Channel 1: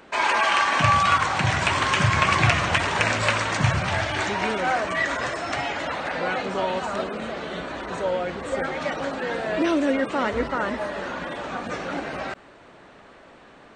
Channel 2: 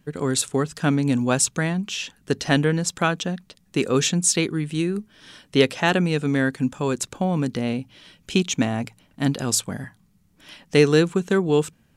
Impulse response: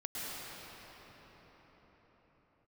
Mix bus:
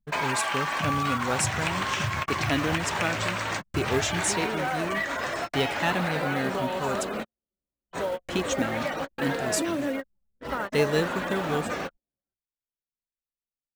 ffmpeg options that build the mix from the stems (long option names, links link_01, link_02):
-filter_complex "[0:a]bandreject=frequency=60:width_type=h:width=6,bandreject=frequency=120:width_type=h:width=6,bandreject=frequency=180:width_type=h:width=6,bandreject=frequency=240:width_type=h:width=6,bandreject=frequency=300:width_type=h:width=6,bandreject=frequency=360:width_type=h:width=6,bandreject=frequency=420:width_type=h:width=6,bandreject=frequency=480:width_type=h:width=6,acompressor=threshold=-29dB:ratio=5,volume=2.5dB[link_01];[1:a]flanger=delay=1.1:depth=2.3:regen=46:speed=0.17:shape=triangular,volume=-3.5dB,asplit=3[link_02][link_03][link_04];[link_02]atrim=end=7.11,asetpts=PTS-STARTPTS,afade=type=out:start_time=7.106:duration=0.004:curve=hsin[link_05];[link_03]atrim=start=7.11:end=7.91,asetpts=PTS-STARTPTS,volume=0[link_06];[link_04]atrim=start=7.91,asetpts=PTS-STARTPTS,afade=type=in:duration=0.004:curve=hsin[link_07];[link_05][link_06][link_07]concat=n=3:v=0:a=1,asplit=2[link_08][link_09];[link_09]apad=whole_len=606420[link_10];[link_01][link_10]sidechaingate=range=-39dB:threshold=-58dB:ratio=16:detection=peak[link_11];[link_11][link_08]amix=inputs=2:normalize=0,acrusher=bits=6:mode=log:mix=0:aa=0.000001,anlmdn=0.00631"